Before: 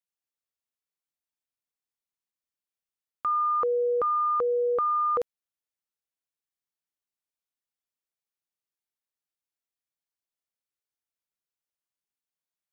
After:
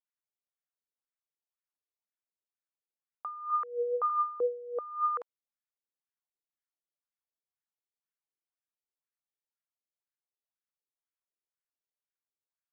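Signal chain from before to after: 3.50–4.10 s: rippled Chebyshev high-pass 240 Hz, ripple 3 dB; wah-wah 2 Hz 370–1700 Hz, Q 2.8

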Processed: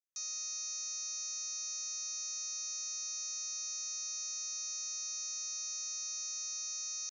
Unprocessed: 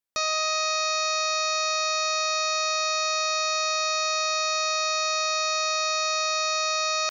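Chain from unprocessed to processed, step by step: band-pass filter 6.3 kHz, Q 8; trim -2 dB

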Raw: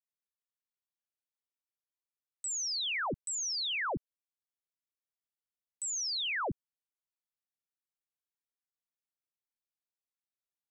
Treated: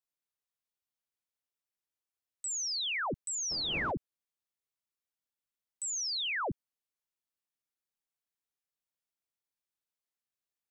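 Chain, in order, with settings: 3.50–3.90 s: wind noise 460 Hz -36 dBFS

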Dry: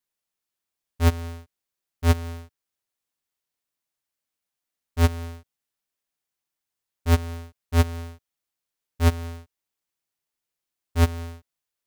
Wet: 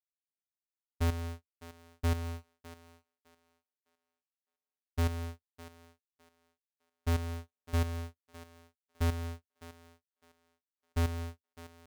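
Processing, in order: gate -35 dBFS, range -44 dB; hard clipper -22 dBFS, distortion -8 dB; on a send: thinning echo 607 ms, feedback 22%, high-pass 280 Hz, level -14 dB; on the sum: trim -4.5 dB

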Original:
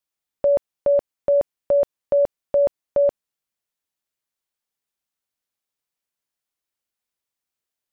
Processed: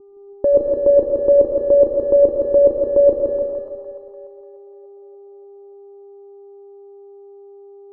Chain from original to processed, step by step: mains buzz 400 Hz, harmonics 3, -58 dBFS -4 dB/octave; in parallel at -4.5 dB: saturation -22 dBFS, distortion -12 dB; on the sum: FFT filter 110 Hz 0 dB, 240 Hz +7 dB, 510 Hz 0 dB, 1.1 kHz -13 dB, 1.7 kHz -25 dB; on a send at -1.5 dB: reverberation RT60 0.85 s, pre-delay 65 ms; on the sum: level-controlled noise filter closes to 830 Hz, open at -15 dBFS; static phaser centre 680 Hz, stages 6; two-band feedback delay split 730 Hz, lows 164 ms, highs 294 ms, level -3.5 dB; trim +8 dB

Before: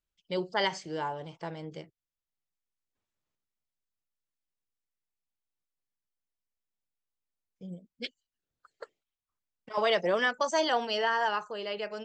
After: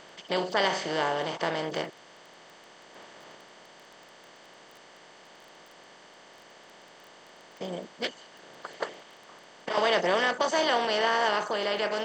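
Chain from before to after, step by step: spectral levelling over time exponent 0.4; crackle 13 per s -38 dBFS; trim -2 dB

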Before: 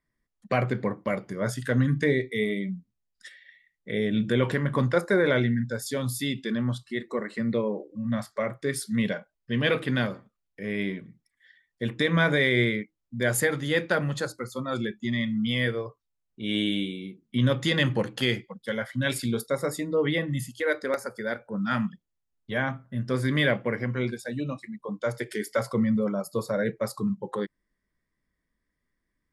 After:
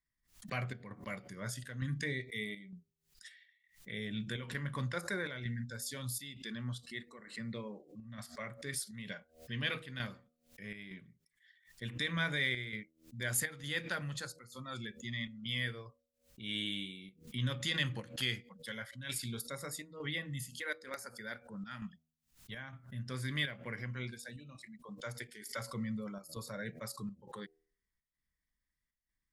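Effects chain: amplifier tone stack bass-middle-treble 5-5-5; square tremolo 1.1 Hz, depth 60%, duty 80%; bass shelf 140 Hz +6 dB; de-hum 79.91 Hz, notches 9; swell ahead of each attack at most 150 dB/s; trim +1 dB

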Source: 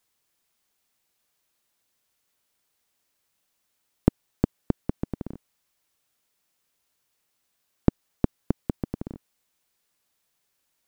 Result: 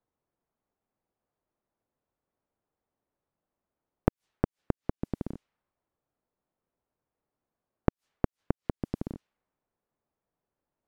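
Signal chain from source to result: inverted gate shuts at -12 dBFS, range -27 dB; level-controlled noise filter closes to 800 Hz, open at -31 dBFS

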